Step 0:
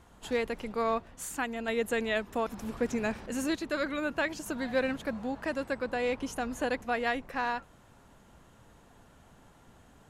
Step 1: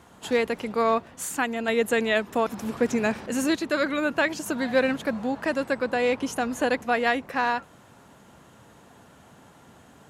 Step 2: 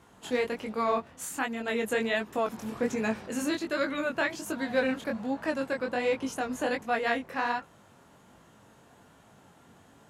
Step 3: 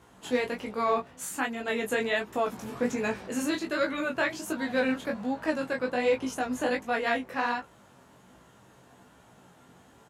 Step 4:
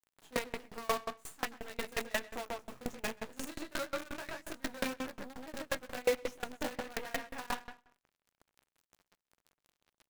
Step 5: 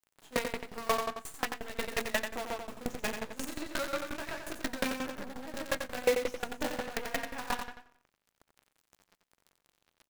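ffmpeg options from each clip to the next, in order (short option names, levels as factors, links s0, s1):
-af "highpass=110,volume=2.24"
-af "flanger=delay=18:depth=6:speed=1.3,volume=0.794"
-filter_complex "[0:a]asplit=2[s0][s1];[s1]adelay=16,volume=0.501[s2];[s0][s2]amix=inputs=2:normalize=0"
-filter_complex "[0:a]acrusher=bits=5:dc=4:mix=0:aa=0.000001,asplit=2[s0][s1];[s1]adelay=129,lowpass=f=4500:p=1,volume=0.501,asplit=2[s2][s3];[s3]adelay=129,lowpass=f=4500:p=1,volume=0.22,asplit=2[s4][s5];[s5]adelay=129,lowpass=f=4500:p=1,volume=0.22[s6];[s2][s4][s6]amix=inputs=3:normalize=0[s7];[s0][s7]amix=inputs=2:normalize=0,aeval=exprs='val(0)*pow(10,-27*if(lt(mod(5.6*n/s,1),2*abs(5.6)/1000),1-mod(5.6*n/s,1)/(2*abs(5.6)/1000),(mod(5.6*n/s,1)-2*abs(5.6)/1000)/(1-2*abs(5.6)/1000))/20)':c=same,volume=0.75"
-af "aecho=1:1:89:0.447,volume=1.41"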